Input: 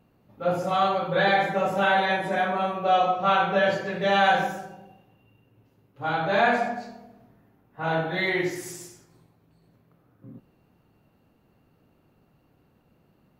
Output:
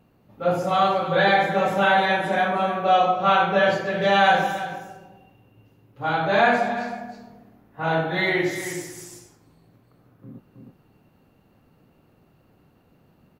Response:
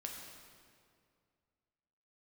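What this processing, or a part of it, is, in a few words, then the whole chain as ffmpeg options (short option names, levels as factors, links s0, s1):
ducked delay: -filter_complex "[0:a]asplit=3[s0][s1][s2];[s1]adelay=317,volume=0.631[s3];[s2]apad=whole_len=604745[s4];[s3][s4]sidechaincompress=threshold=0.0316:ratio=4:attack=5.2:release=796[s5];[s0][s5]amix=inputs=2:normalize=0,volume=1.41"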